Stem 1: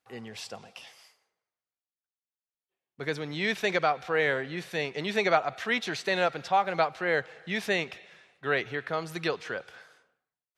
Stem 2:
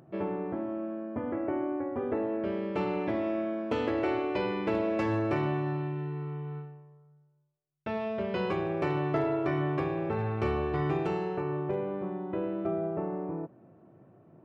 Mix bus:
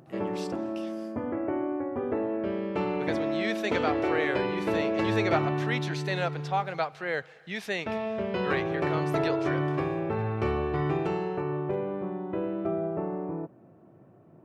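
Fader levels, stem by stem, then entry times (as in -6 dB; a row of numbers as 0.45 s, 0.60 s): -4.0 dB, +1.5 dB; 0.00 s, 0.00 s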